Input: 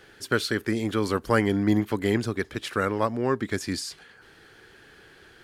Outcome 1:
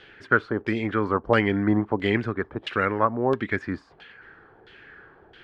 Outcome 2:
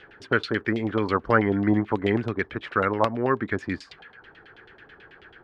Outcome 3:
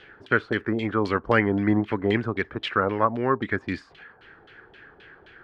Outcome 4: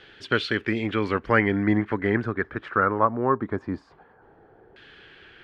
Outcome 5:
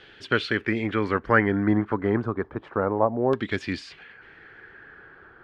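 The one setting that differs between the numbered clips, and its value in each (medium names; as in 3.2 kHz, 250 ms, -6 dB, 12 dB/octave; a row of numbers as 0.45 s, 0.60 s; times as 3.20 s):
LFO low-pass, rate: 1.5 Hz, 9.2 Hz, 3.8 Hz, 0.21 Hz, 0.3 Hz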